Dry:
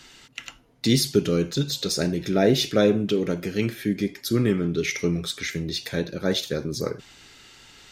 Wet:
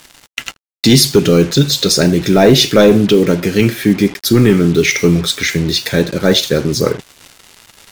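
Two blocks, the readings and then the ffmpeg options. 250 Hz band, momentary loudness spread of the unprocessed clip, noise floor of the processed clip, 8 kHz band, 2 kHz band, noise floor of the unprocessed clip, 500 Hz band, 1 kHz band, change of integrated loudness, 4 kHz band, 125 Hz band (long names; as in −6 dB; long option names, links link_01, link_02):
+12.0 dB, 10 LU, −51 dBFS, +13.5 dB, +13.0 dB, −52 dBFS, +12.0 dB, +13.0 dB, +12.5 dB, +13.5 dB, +12.5 dB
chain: -af "acontrast=28,acrusher=bits=5:mix=0:aa=0.5,apsyclip=10dB,volume=-1.5dB"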